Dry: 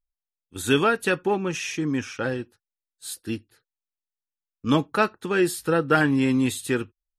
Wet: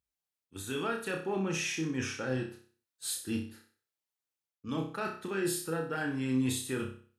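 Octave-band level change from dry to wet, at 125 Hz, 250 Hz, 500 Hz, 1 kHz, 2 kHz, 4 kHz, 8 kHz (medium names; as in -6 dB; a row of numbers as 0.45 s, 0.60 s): -8.0 dB, -9.5 dB, -11.0 dB, -13.0 dB, -11.0 dB, -7.5 dB, -3.0 dB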